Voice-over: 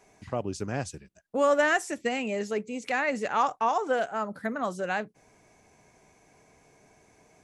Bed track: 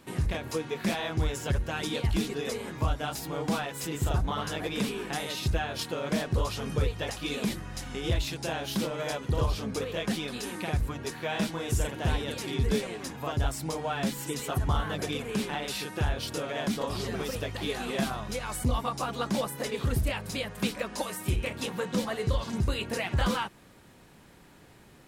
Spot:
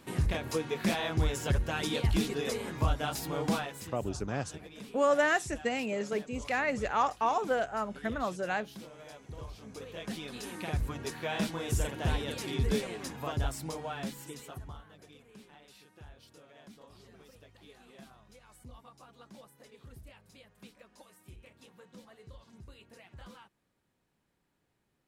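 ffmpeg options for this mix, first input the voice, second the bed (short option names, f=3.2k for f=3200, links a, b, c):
-filter_complex "[0:a]adelay=3600,volume=-3dB[a];[1:a]volume=14dB,afade=t=out:st=3.49:d=0.44:silence=0.149624,afade=t=in:st=9.57:d=1.41:silence=0.188365,afade=t=out:st=13.19:d=1.64:silence=0.0891251[b];[a][b]amix=inputs=2:normalize=0"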